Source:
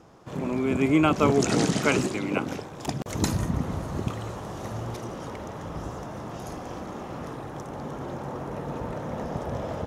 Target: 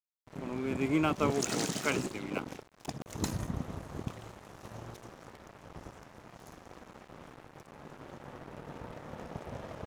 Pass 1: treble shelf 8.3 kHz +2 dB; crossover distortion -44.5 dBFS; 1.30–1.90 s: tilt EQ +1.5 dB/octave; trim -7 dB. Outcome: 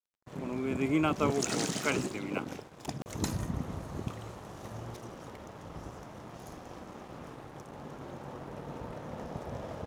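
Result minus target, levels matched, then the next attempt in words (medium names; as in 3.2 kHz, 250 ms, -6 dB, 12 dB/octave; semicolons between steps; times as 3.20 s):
crossover distortion: distortion -8 dB
treble shelf 8.3 kHz +2 dB; crossover distortion -36 dBFS; 1.30–1.90 s: tilt EQ +1.5 dB/octave; trim -7 dB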